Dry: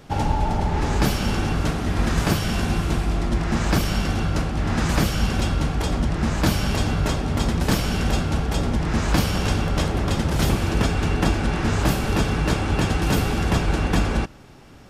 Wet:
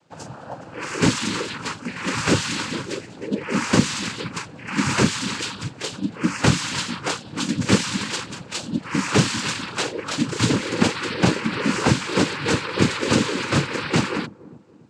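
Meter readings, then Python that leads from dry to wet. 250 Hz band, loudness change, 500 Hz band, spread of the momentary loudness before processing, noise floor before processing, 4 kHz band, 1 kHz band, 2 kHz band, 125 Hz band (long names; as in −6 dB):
+1.0 dB, −0.5 dB, +1.0 dB, 2 LU, −29 dBFS, +4.0 dB, −1.0 dB, +3.0 dB, −4.5 dB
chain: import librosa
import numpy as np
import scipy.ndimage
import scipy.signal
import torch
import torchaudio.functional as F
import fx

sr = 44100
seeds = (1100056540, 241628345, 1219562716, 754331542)

y = fx.noise_reduce_blind(x, sr, reduce_db=19)
y = fx.noise_vocoder(y, sr, seeds[0], bands=8)
y = fx.echo_wet_lowpass(y, sr, ms=285, feedback_pct=42, hz=610.0, wet_db=-17.0)
y = F.gain(torch.from_numpy(y), 5.5).numpy()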